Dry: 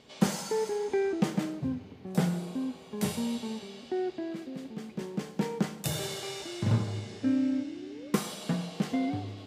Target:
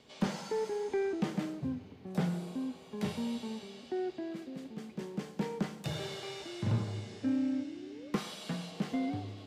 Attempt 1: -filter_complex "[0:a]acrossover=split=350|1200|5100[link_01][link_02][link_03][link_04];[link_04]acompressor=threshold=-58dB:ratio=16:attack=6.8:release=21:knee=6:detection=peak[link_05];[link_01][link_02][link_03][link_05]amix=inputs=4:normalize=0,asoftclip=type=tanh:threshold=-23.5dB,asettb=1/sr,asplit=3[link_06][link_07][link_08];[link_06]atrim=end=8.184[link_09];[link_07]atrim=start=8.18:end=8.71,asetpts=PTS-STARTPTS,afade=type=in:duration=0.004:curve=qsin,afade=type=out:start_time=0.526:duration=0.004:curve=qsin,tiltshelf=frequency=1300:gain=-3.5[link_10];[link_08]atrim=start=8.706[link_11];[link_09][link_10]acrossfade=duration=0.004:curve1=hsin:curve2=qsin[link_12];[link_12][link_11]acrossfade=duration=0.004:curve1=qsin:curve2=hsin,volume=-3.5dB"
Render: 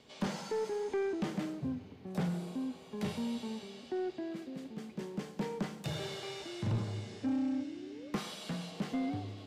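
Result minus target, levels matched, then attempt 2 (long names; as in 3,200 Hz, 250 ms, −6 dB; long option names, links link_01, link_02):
soft clipping: distortion +7 dB
-filter_complex "[0:a]acrossover=split=350|1200|5100[link_01][link_02][link_03][link_04];[link_04]acompressor=threshold=-58dB:ratio=16:attack=6.8:release=21:knee=6:detection=peak[link_05];[link_01][link_02][link_03][link_05]amix=inputs=4:normalize=0,asoftclip=type=tanh:threshold=-17dB,asettb=1/sr,asplit=3[link_06][link_07][link_08];[link_06]atrim=end=8.184[link_09];[link_07]atrim=start=8.18:end=8.71,asetpts=PTS-STARTPTS,afade=type=in:duration=0.004:curve=qsin,afade=type=out:start_time=0.526:duration=0.004:curve=qsin,tiltshelf=frequency=1300:gain=-3.5[link_10];[link_08]atrim=start=8.706[link_11];[link_09][link_10]acrossfade=duration=0.004:curve1=hsin:curve2=qsin[link_12];[link_12][link_11]acrossfade=duration=0.004:curve1=qsin:curve2=hsin,volume=-3.5dB"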